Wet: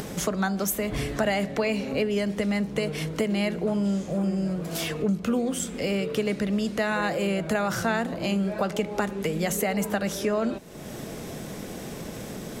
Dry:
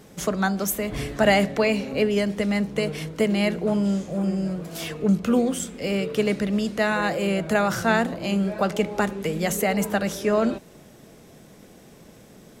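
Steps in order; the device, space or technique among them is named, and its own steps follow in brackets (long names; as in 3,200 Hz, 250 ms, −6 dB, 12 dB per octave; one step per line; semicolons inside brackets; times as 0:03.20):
upward and downward compression (upward compression, threshold −24 dBFS; downward compressor 4 to 1, threshold −22 dBFS, peak gain reduction 8 dB)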